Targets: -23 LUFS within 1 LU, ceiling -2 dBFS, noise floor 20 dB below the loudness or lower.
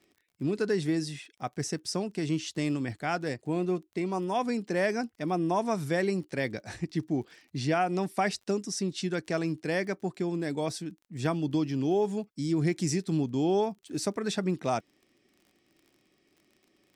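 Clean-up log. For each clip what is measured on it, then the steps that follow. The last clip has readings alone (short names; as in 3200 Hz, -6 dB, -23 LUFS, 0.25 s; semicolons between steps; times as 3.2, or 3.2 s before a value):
ticks 38/s; loudness -30.5 LUFS; peak -15.0 dBFS; loudness target -23.0 LUFS
-> de-click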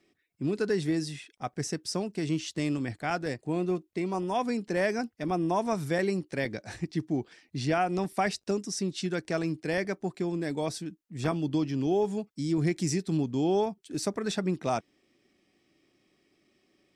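ticks 0.059/s; loudness -30.5 LUFS; peak -15.0 dBFS; loudness target -23.0 LUFS
-> gain +7.5 dB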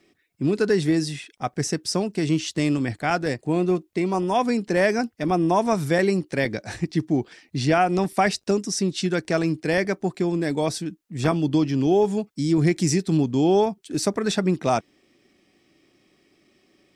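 loudness -23.0 LUFS; peak -7.5 dBFS; noise floor -66 dBFS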